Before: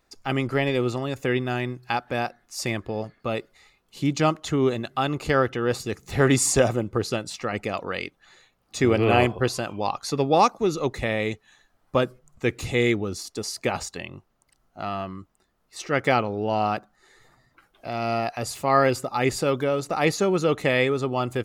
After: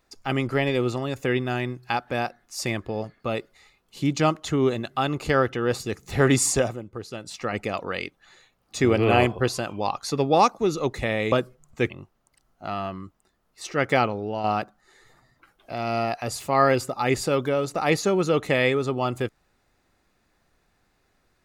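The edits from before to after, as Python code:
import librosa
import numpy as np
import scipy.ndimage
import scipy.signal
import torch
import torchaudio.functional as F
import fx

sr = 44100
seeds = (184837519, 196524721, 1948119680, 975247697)

y = fx.edit(x, sr, fx.fade_down_up(start_s=6.45, length_s=1.01, db=-10.5, fade_s=0.34),
    fx.cut(start_s=11.32, length_s=0.64),
    fx.cut(start_s=12.54, length_s=1.51),
    fx.fade_out_to(start_s=16.21, length_s=0.38, floor_db=-6.5), tone=tone)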